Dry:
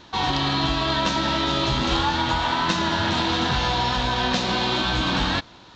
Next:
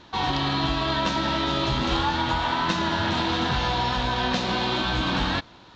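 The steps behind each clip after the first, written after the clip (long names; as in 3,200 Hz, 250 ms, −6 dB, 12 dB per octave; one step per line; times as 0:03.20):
high-shelf EQ 6,500 Hz −8.5 dB
level −1.5 dB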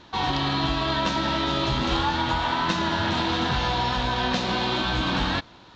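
no processing that can be heard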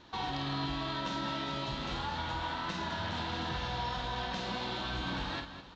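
downward compressor 3 to 1, threshold −28 dBFS, peak gain reduction 7 dB
on a send: multi-tap delay 50/208/465 ms −6/−10.5/−17 dB
on the sum: level −7.5 dB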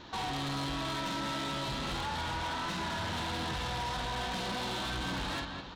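soft clipping −39.5 dBFS, distortion −9 dB
level +7 dB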